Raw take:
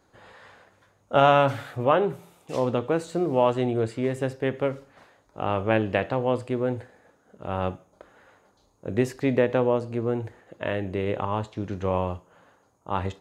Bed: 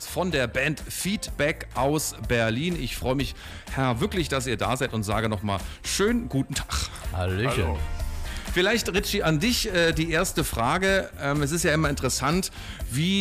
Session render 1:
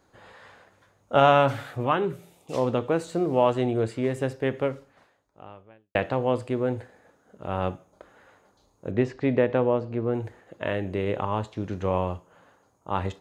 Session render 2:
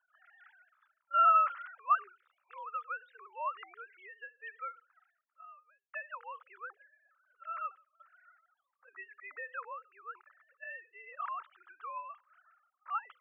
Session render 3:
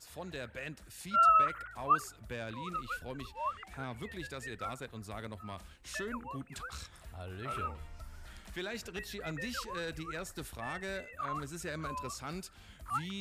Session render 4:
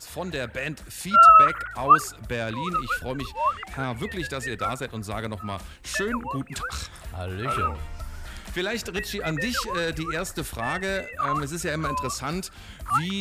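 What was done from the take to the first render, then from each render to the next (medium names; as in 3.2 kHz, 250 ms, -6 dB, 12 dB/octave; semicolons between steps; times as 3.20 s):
1.85–2.52 s: peaking EQ 450 Hz -> 1.8 kHz -14.5 dB 0.47 oct; 4.61–5.95 s: fade out quadratic; 8.91–10.14 s: distance through air 160 m
formants replaced by sine waves; ladder high-pass 1.2 kHz, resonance 75%
add bed -18 dB
trim +12 dB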